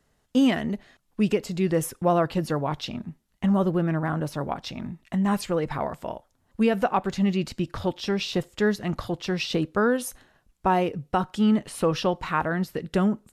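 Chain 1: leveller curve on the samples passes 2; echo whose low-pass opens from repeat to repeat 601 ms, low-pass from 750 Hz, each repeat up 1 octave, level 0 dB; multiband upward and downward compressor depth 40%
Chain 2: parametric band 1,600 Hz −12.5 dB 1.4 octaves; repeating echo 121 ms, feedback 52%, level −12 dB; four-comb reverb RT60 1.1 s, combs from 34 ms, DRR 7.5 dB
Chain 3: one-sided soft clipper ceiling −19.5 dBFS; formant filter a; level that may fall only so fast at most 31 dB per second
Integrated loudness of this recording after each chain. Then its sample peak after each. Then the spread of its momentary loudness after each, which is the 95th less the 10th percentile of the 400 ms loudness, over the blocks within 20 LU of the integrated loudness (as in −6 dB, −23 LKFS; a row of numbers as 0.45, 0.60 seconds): −17.5, −26.0, −36.0 LKFS; −2.5, −11.0, −17.0 dBFS; 2, 11, 13 LU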